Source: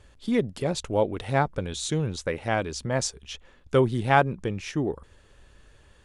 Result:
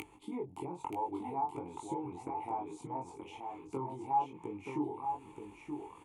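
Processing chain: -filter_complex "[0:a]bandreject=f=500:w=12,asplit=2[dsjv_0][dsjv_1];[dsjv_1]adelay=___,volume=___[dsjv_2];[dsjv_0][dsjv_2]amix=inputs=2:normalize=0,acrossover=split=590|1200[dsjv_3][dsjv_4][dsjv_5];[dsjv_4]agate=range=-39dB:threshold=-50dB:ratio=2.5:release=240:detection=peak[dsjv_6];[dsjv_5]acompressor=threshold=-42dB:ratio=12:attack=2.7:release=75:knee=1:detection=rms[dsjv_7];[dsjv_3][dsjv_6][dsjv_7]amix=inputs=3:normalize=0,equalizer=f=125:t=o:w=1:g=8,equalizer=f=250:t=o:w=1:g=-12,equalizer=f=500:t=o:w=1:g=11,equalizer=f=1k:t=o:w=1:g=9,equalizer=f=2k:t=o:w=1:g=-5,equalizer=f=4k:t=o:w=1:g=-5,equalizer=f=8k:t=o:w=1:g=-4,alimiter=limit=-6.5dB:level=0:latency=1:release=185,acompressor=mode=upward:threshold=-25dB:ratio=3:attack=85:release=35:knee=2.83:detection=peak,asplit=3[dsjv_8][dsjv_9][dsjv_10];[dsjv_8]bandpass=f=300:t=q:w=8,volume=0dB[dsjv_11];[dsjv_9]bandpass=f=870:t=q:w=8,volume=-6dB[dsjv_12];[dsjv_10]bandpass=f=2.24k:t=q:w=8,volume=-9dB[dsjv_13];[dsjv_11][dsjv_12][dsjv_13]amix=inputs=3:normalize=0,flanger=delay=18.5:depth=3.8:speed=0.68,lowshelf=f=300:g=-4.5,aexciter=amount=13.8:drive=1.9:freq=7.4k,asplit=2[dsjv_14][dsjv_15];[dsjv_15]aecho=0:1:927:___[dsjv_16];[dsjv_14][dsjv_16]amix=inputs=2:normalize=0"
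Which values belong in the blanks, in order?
23, -3.5dB, 0.501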